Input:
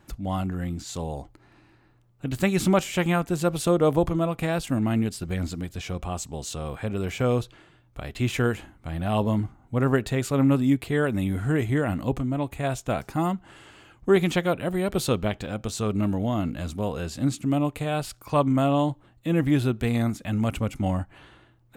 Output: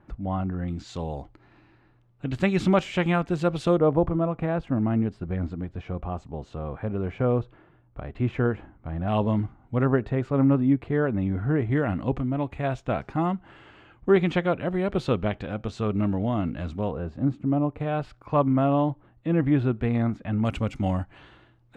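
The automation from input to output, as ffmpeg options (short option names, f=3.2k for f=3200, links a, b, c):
-af "asetnsamples=n=441:p=0,asendcmd='0.68 lowpass f 3700;3.78 lowpass f 1400;9.08 lowpass f 3000;9.86 lowpass f 1500;11.71 lowpass f 2700;16.91 lowpass f 1100;17.8 lowpass f 1900;20.45 lowpass f 5100',lowpass=1.6k"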